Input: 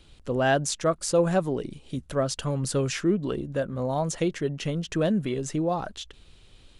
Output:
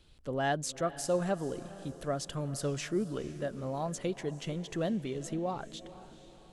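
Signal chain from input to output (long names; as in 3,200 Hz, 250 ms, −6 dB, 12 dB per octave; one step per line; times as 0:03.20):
feedback delay with all-pass diffusion 476 ms, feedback 47%, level −15.5 dB
wrong playback speed 24 fps film run at 25 fps
level −8 dB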